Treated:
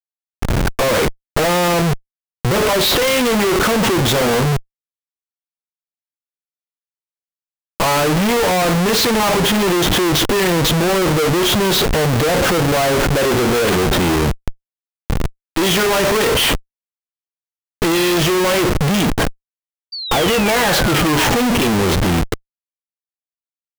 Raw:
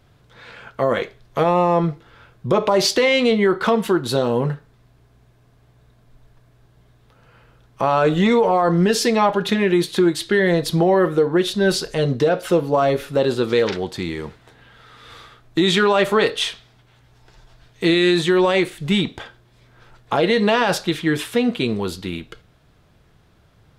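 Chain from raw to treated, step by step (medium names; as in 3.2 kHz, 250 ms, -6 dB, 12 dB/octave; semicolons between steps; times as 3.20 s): knee-point frequency compression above 2.6 kHz 1.5:1; Schmitt trigger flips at -34.5 dBFS; painted sound fall, 19.92–21.37 s, 780–4700 Hz -32 dBFS; trim +5.5 dB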